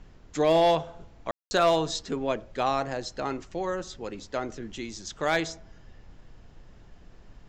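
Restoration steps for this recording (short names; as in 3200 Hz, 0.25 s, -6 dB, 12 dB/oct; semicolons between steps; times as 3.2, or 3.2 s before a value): clip repair -14 dBFS; room tone fill 1.31–1.51; noise print and reduce 20 dB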